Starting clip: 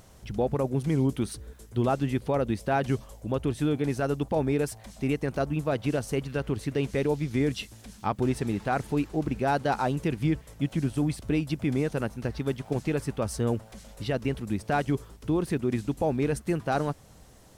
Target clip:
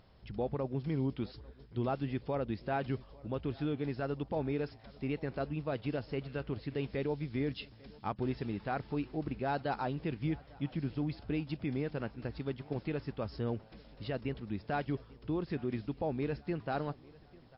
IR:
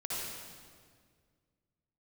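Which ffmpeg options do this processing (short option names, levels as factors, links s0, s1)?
-filter_complex "[0:a]asplit=2[s0][s1];[s1]aecho=0:1:846|1692|2538:0.0668|0.0334|0.0167[s2];[s0][s2]amix=inputs=2:normalize=0,volume=0.398" -ar 12000 -c:a libmp3lame -b:a 32k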